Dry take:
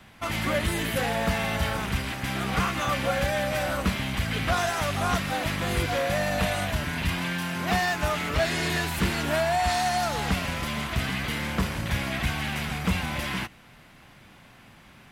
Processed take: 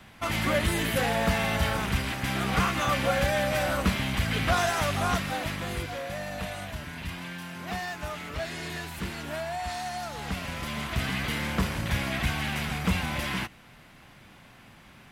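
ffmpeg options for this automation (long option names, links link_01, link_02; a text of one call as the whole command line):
ffmpeg -i in.wav -af "volume=9dB,afade=type=out:start_time=4.8:duration=1.16:silence=0.334965,afade=type=in:start_time=10.13:duration=1.06:silence=0.375837" out.wav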